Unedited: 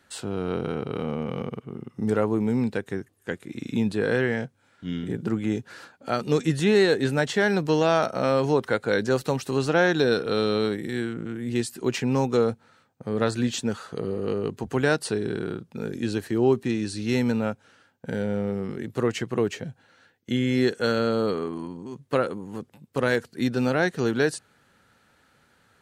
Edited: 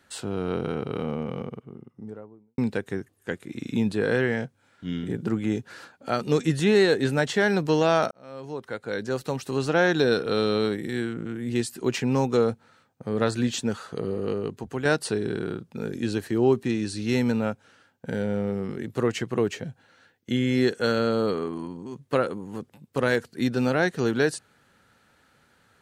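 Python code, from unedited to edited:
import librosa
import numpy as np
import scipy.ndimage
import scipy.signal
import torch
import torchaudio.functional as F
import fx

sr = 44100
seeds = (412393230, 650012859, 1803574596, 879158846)

y = fx.studio_fade_out(x, sr, start_s=0.89, length_s=1.69)
y = fx.edit(y, sr, fx.fade_in_span(start_s=8.11, length_s=1.82),
    fx.fade_out_to(start_s=14.2, length_s=0.65, floor_db=-7.0), tone=tone)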